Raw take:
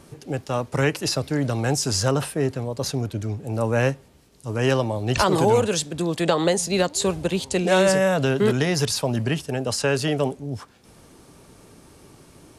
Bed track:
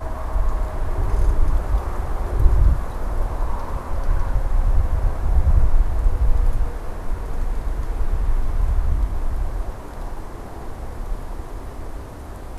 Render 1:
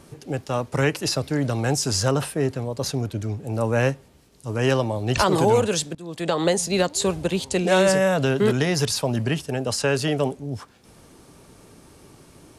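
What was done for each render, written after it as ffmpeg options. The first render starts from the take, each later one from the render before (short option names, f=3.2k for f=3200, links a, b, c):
-filter_complex "[0:a]asplit=2[a][b];[a]atrim=end=5.95,asetpts=PTS-STARTPTS,afade=t=out:st=5.946:d=0.004:c=hsin:silence=0.0794328[c];[b]atrim=start=5.95,asetpts=PTS-STARTPTS,afade=t=in:d=0.53:silence=0.0794328[d];[c][d]concat=n=2:v=0:a=1"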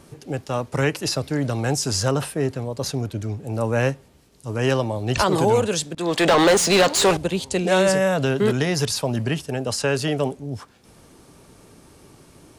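-filter_complex "[0:a]asettb=1/sr,asplit=3[a][b][c];[a]atrim=end=5.974[d];[b]atrim=start=5.97:end=7.17,asetpts=PTS-STARTPTS,afade=t=in:d=0.004:c=qsin,afade=t=out:st=1.196:d=0.004:c=qsin,asplit=2[e][f];[f]highpass=f=720:p=1,volume=26dB,asoftclip=type=tanh:threshold=-8dB[g];[e][g]amix=inputs=2:normalize=0,lowpass=f=4k:p=1,volume=-6dB[h];[c]atrim=start=7.166[i];[d][h]acrossfade=d=0.004:c1=hsin:c2=qsin[j];[j][i]acrossfade=d=0.004:c1=qsin:c2=hsin"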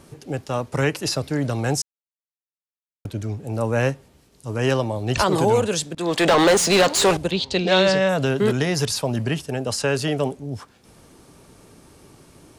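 -filter_complex "[0:a]asettb=1/sr,asplit=3[a][b][c];[a]atrim=end=7.314[d];[b]atrim=start=7.31:end=8.09,asetpts=PTS-STARTPTS,afade=t=in:d=0.004:c=qsin,afade=t=out:st=0.776:d=0.004:c=qsin,lowpass=f=4.1k:t=q:w=2.9[e];[c]atrim=start=8.086[f];[d][e]acrossfade=d=0.004:c1=hsin:c2=qsin[g];[g][f]acrossfade=d=0.004:c1=qsin:c2=hsin,asplit=3[h][i][j];[h]atrim=end=1.82,asetpts=PTS-STARTPTS,afade=t=out:st=1.816:d=0.004:c=hsin[k];[i]atrim=start=1.82:end=3.05,asetpts=PTS-STARTPTS,volume=0[l];[j]atrim=start=3.05,asetpts=PTS-STARTPTS,afade=t=in:d=0.004:c=hsin[m];[k][l][m]concat=n=3:v=0:a=1"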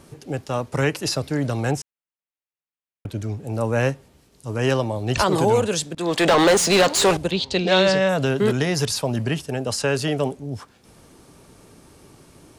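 -filter_complex "[0:a]asettb=1/sr,asplit=3[a][b][c];[a]atrim=end=1.714[d];[b]atrim=start=1.71:end=3.09,asetpts=PTS-STARTPTS,afade=t=in:d=0.004:c=qsin,afade=t=out:st=1.376:d=0.004:c=qsin,highshelf=f=3.6k:t=q:w=1.5:g=-8[e];[c]atrim=start=3.086[f];[d][e]acrossfade=d=0.004:c1=hsin:c2=qsin[g];[g][f]acrossfade=d=0.004:c1=qsin:c2=hsin"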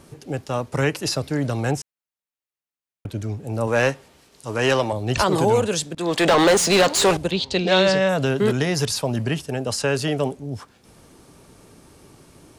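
-filter_complex "[0:a]asettb=1/sr,asplit=3[a][b][c];[a]atrim=end=3.674[d];[b]atrim=start=3.67:end=4.93,asetpts=PTS-STARTPTS,afade=t=in:d=0.004:c=qsin,afade=t=out:st=1.256:d=0.004:c=qsin,asplit=2[e][f];[f]highpass=f=720:p=1,volume=12dB,asoftclip=type=tanh:threshold=-8dB[g];[e][g]amix=inputs=2:normalize=0,lowpass=f=6.9k:p=1,volume=-6dB[h];[c]atrim=start=4.926[i];[d][h]acrossfade=d=0.004:c1=hsin:c2=qsin[j];[j][i]acrossfade=d=0.004:c1=qsin:c2=hsin"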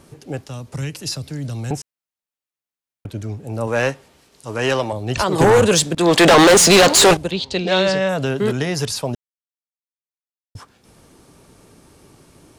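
-filter_complex "[0:a]asettb=1/sr,asplit=3[a][b][c];[a]atrim=end=0.444[d];[b]atrim=start=0.44:end=1.71,asetpts=PTS-STARTPTS,afade=t=in:d=0.004:c=qsin,afade=t=out:st=1.266:d=0.004:c=qsin,acrossover=split=220|3000[e][f][g];[f]acompressor=threshold=-38dB:ratio=4:attack=3.2:release=140:knee=2.83:detection=peak[h];[e][h][g]amix=inputs=3:normalize=0[i];[c]atrim=start=1.706[j];[d][i]acrossfade=d=0.004:c1=hsin:c2=qsin[k];[k][j]acrossfade=d=0.004:c1=qsin:c2=hsin,asplit=3[l][m][n];[l]afade=t=out:st=5.39:d=0.02[o];[m]aeval=exprs='0.422*sin(PI/2*2*val(0)/0.422)':c=same,afade=t=in:st=5.39:d=0.02,afade=t=out:st=7.13:d=0.02[p];[n]afade=t=in:st=7.13:d=0.02[q];[o][p][q]amix=inputs=3:normalize=0,asplit=3[r][s][t];[r]atrim=end=9.15,asetpts=PTS-STARTPTS,afade=t=out:st=9.146:d=0.004:c=hsin[u];[s]atrim=start=9.15:end=10.55,asetpts=PTS-STARTPTS,volume=0[v];[t]atrim=start=10.55,asetpts=PTS-STARTPTS,afade=t=in:d=0.004:c=hsin[w];[u][v][w]concat=n=3:v=0:a=1"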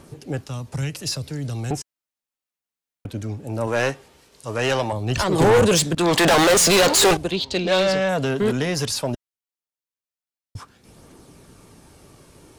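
-af "asoftclip=type=tanh:threshold=-13.5dB,aphaser=in_gain=1:out_gain=1:delay=4.5:decay=0.24:speed=0.18:type=triangular"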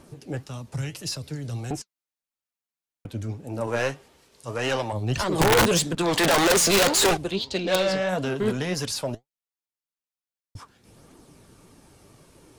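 -af "flanger=delay=2.8:depth=7.7:regen=62:speed=1.7:shape=triangular,aeval=exprs='(mod(4.73*val(0)+1,2)-1)/4.73':c=same"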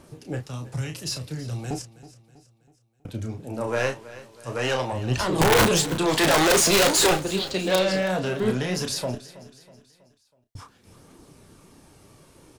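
-filter_complex "[0:a]asplit=2[a][b];[b]adelay=32,volume=-7dB[c];[a][c]amix=inputs=2:normalize=0,aecho=1:1:323|646|969|1292:0.133|0.0627|0.0295|0.0138"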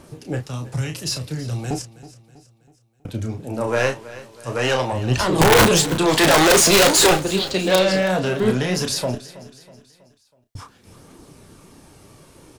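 -af "volume=5dB"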